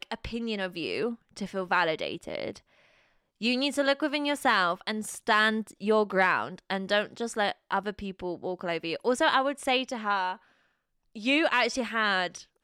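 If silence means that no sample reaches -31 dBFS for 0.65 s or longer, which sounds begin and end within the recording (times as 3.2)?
3.42–10.33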